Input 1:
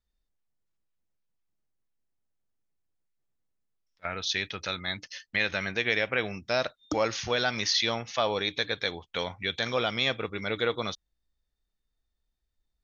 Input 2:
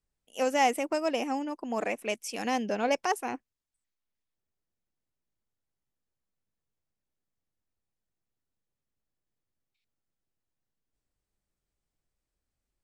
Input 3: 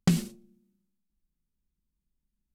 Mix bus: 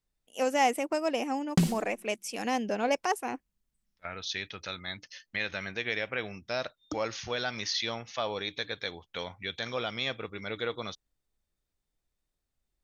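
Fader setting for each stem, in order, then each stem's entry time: -5.5, -0.5, -1.0 dB; 0.00, 0.00, 1.50 s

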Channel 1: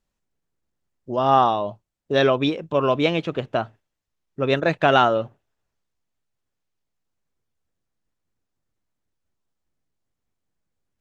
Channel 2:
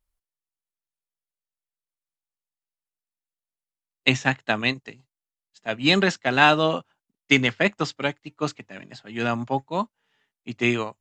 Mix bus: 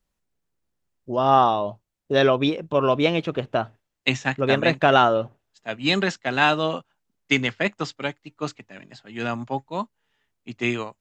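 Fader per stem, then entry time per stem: 0.0, -2.5 dB; 0.00, 0.00 s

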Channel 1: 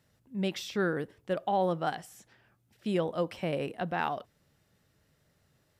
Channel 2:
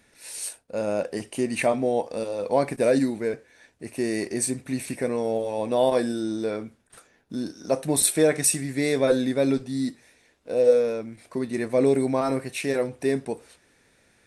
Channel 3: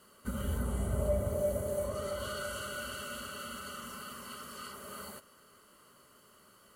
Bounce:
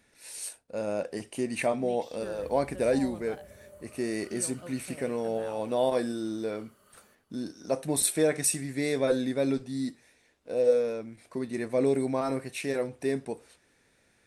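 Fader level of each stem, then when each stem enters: -15.0, -5.0, -17.5 dB; 1.45, 0.00, 1.95 s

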